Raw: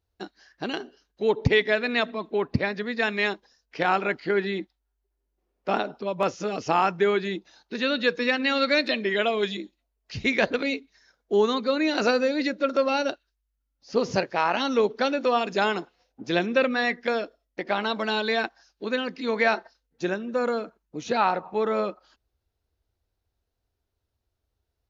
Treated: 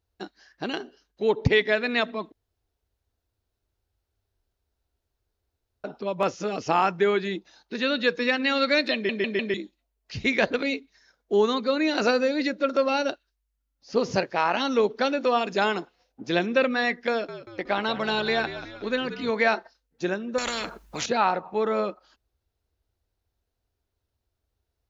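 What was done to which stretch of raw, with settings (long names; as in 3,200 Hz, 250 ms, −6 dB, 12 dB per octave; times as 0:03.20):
0:02.32–0:05.84: fill with room tone
0:08.94: stutter in place 0.15 s, 4 plays
0:17.10–0:19.30: echo with shifted repeats 184 ms, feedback 49%, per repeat −63 Hz, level −12 dB
0:20.38–0:21.06: every bin compressed towards the loudest bin 4 to 1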